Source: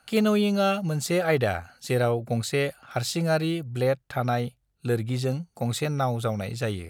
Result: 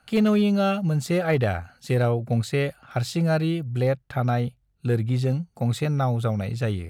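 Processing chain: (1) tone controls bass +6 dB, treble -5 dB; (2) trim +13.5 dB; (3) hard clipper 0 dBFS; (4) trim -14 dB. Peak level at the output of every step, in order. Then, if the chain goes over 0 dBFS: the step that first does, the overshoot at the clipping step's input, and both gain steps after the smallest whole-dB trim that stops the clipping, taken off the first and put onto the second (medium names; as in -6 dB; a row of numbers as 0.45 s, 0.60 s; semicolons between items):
-10.0 dBFS, +3.5 dBFS, 0.0 dBFS, -14.0 dBFS; step 2, 3.5 dB; step 2 +9.5 dB, step 4 -10 dB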